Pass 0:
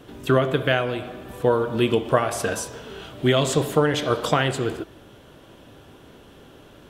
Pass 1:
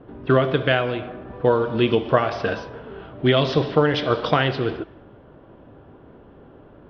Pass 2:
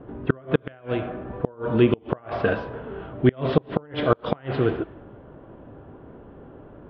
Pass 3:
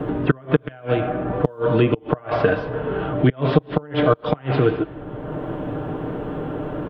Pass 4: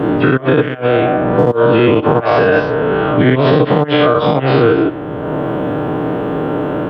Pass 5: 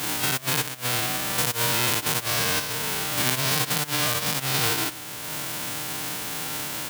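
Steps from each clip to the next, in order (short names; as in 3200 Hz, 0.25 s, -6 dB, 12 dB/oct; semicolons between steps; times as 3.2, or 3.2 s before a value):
steep low-pass 5600 Hz 96 dB/oct; low-pass opened by the level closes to 1100 Hz, open at -15 dBFS; gain +1.5 dB
treble ducked by the level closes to 2200 Hz, closed at -13.5 dBFS; air absorption 330 m; flipped gate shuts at -8 dBFS, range -30 dB; gain +3 dB
comb 6.6 ms, depth 52%; three-band squash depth 70%; gain +3 dB
spectral dilation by 0.12 s; HPF 170 Hz 6 dB/oct; limiter -9 dBFS, peak gain reduction 9 dB; gain +7 dB
spectral whitening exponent 0.1; gain -13.5 dB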